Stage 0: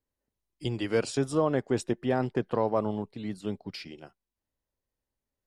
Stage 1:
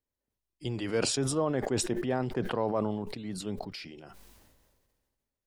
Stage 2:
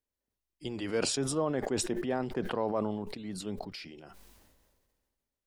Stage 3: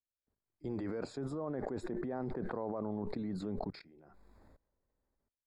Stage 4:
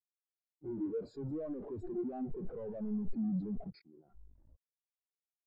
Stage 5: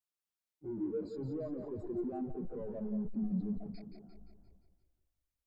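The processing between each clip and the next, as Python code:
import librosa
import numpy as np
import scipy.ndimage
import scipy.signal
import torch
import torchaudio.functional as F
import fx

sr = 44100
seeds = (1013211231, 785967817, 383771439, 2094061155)

y1 = fx.sustainer(x, sr, db_per_s=32.0)
y1 = y1 * 10.0 ** (-4.0 / 20.0)
y2 = fx.peak_eq(y1, sr, hz=120.0, db=-10.0, octaves=0.21)
y2 = y2 * 10.0 ** (-1.5 / 20.0)
y3 = fx.level_steps(y2, sr, step_db=22)
y3 = np.convolve(y3, np.full(15, 1.0 / 15))[:len(y3)]
y3 = y3 * 10.0 ** (6.5 / 20.0)
y4 = fx.leveller(y3, sr, passes=5)
y4 = 10.0 ** (-38.5 / 20.0) * np.tanh(y4 / 10.0 ** (-38.5 / 20.0))
y4 = fx.spectral_expand(y4, sr, expansion=2.5)
y4 = y4 * 10.0 ** (12.0 / 20.0)
y5 = fx.echo_feedback(y4, sr, ms=174, feedback_pct=52, wet_db=-8)
y5 = fx.transformer_sat(y5, sr, knee_hz=39.0)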